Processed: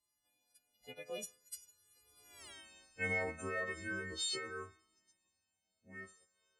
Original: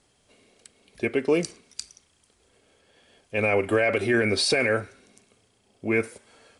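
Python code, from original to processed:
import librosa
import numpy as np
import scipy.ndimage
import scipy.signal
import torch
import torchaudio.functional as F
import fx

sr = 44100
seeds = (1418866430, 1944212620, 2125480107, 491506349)

y = fx.freq_snap(x, sr, grid_st=3)
y = fx.doppler_pass(y, sr, speed_mps=49, closest_m=3.6, pass_at_s=2.46)
y = fx.comb_cascade(y, sr, direction='falling', hz=0.4)
y = F.gain(torch.from_numpy(y), 8.5).numpy()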